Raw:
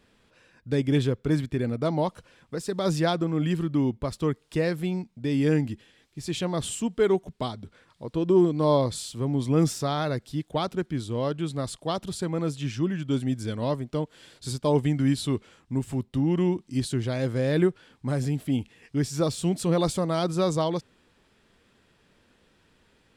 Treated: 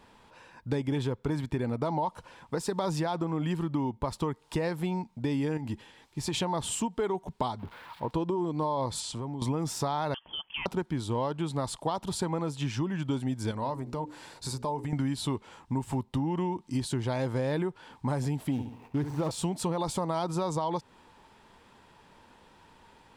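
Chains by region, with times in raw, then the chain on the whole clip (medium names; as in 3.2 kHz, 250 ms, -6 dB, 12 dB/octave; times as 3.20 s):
5.57–6.34 s: band-stop 720 Hz, Q 24 + compression, threshold -28 dBFS
7.59–8.11 s: zero-crossing glitches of -31 dBFS + distance through air 440 m
9.00–9.42 s: low-pass 9.3 kHz 24 dB/octave + compression 20:1, threshold -35 dBFS
10.14–10.66 s: bass shelf 410 Hz -6.5 dB + compression 4:1, threshold -37 dBFS + frequency inversion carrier 3.3 kHz
13.51–14.93 s: peaking EQ 3.2 kHz -9 dB 0.23 oct + hum notches 60/120/180/240/300/360/420/480/540 Hz + compression, threshold -34 dBFS
18.51–19.31 s: median filter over 25 samples + flutter echo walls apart 11.7 m, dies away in 0.41 s
whole clip: peaking EQ 910 Hz +15 dB 0.48 oct; peak limiter -15 dBFS; compression, threshold -30 dBFS; trim +3 dB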